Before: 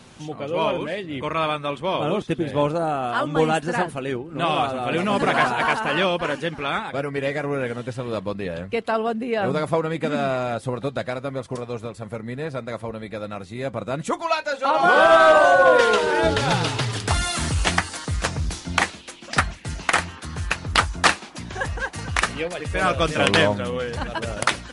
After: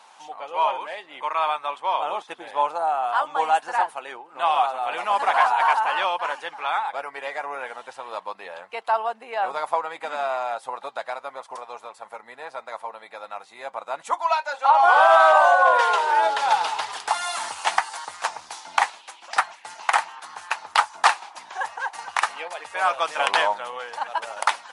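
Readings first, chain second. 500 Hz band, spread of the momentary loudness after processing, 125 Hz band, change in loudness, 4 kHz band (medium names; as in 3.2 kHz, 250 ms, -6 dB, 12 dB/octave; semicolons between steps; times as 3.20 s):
-6.0 dB, 18 LU, under -35 dB, -0.5 dB, -4.5 dB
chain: resonant high-pass 860 Hz, resonance Q 4.2; trim -5 dB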